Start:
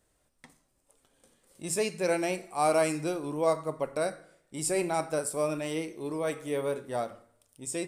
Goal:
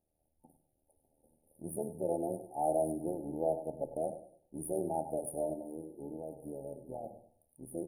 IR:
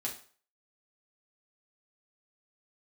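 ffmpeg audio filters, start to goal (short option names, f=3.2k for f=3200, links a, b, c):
-filter_complex "[0:a]bandreject=f=50:t=h:w=6,bandreject=f=100:t=h:w=6,bandreject=f=150:t=h:w=6,asplit=2[a][b];[b]asoftclip=type=tanh:threshold=-32dB,volume=-8dB[c];[a][c]amix=inputs=2:normalize=0,equalizer=f=440:t=o:w=0.22:g=-5.5,asettb=1/sr,asplit=3[d][e][f];[d]atrim=end=5.534[g];[e]atrim=start=5.53:end=7.04,asetpts=PTS-STARTPTS,afade=t=in:d=0.004:c=qsin,afade=t=out:st=1.506:d=0.004:c=qsin,acompressor=threshold=-34dB:ratio=6[h];[f]atrim=start=7.036[i];[g][h]acrossfade=d=0.004:c1=hsin:c2=qsin[j];[j][i]acrossfade=d=0.004:c1=qsin:c2=hsin,tremolo=f=78:d=0.788,aecho=1:1:100|200|300:0.224|0.0627|0.0176,afftfilt=real='re*(1-between(b*sr/4096,900,9300))':imag='im*(1-between(b*sr/4096,900,9300))':win_size=4096:overlap=0.75,dynaudnorm=f=170:g=3:m=6dB,volume=-9dB"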